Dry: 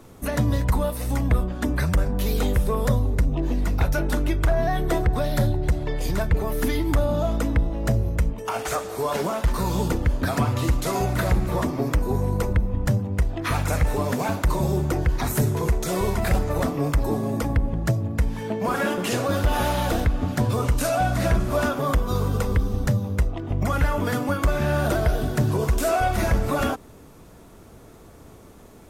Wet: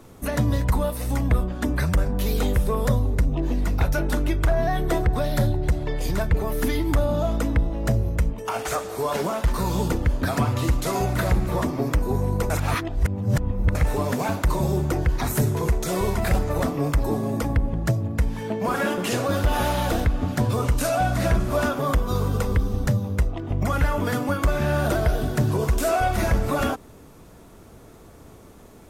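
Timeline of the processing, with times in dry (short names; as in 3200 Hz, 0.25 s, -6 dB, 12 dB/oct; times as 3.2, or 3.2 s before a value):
12.5–13.75 reverse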